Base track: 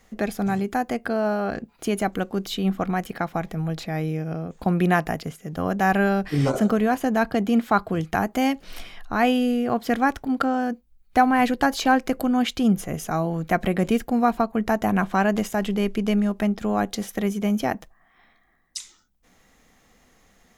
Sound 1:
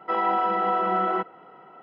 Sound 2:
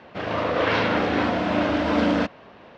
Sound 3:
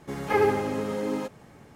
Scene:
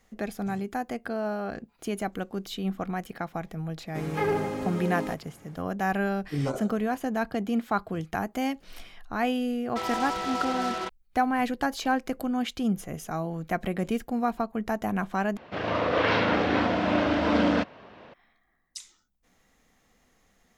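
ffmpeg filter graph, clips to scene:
-filter_complex "[0:a]volume=0.447[s0];[3:a]asoftclip=type=tanh:threshold=0.168[s1];[1:a]acrusher=bits=3:mix=0:aa=0.5[s2];[s0]asplit=2[s3][s4];[s3]atrim=end=15.374[s5];[2:a]atrim=end=2.77,asetpts=PTS-STARTPTS,volume=0.794[s6];[s4]atrim=start=18.136[s7];[s1]atrim=end=1.75,asetpts=PTS-STARTPTS,volume=0.708,afade=t=in:d=0.004:c=hsin,afade=t=out:st=1.746:d=0.004:c=hsin,adelay=3870[s8];[s2]atrim=end=1.82,asetpts=PTS-STARTPTS,volume=0.398,afade=t=in:d=0.004:c=hsin,afade=t=out:st=1.816:d=0.004:c=hsin,adelay=9670[s9];[s5][s6]acrossfade=d=0.004:c1=hsin:c2=hsin[s10];[s10][s7]acrossfade=d=0.004:c1=hsin:c2=hsin[s11];[s11][s8][s9]amix=inputs=3:normalize=0"

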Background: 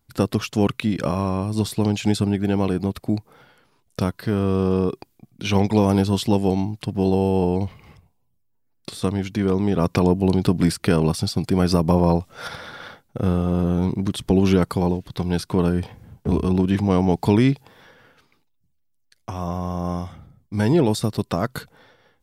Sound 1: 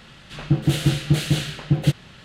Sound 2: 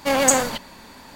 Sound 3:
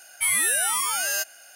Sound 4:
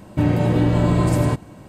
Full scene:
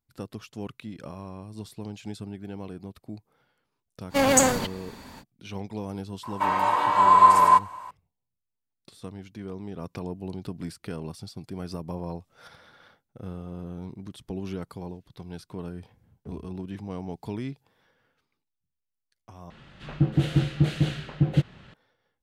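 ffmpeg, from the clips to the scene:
-filter_complex "[0:a]volume=0.141[s0];[2:a]equalizer=f=93:w=0.4:g=8[s1];[4:a]highpass=f=1000:t=q:w=12[s2];[1:a]lowpass=f=1800:p=1[s3];[s0]asplit=2[s4][s5];[s4]atrim=end=19.504[s6];[s3]atrim=end=2.24,asetpts=PTS-STARTPTS,volume=0.708[s7];[s5]atrim=start=21.736[s8];[s1]atrim=end=1.15,asetpts=PTS-STARTPTS,volume=0.708,afade=t=in:d=0.05,afade=t=out:st=1.1:d=0.05,adelay=180369S[s9];[s2]atrim=end=1.68,asetpts=PTS-STARTPTS,volume=0.841,afade=t=in:d=0.004:c=hsin,afade=t=out:st=1.676:d=0.004:c=hsin,adelay=6230[s10];[s6][s7]acrossfade=d=0.004:c1=hsin:c2=hsin[s11];[s11][s8]acrossfade=d=0.004:c1=hsin:c2=hsin[s12];[s12][s9][s10]amix=inputs=3:normalize=0"

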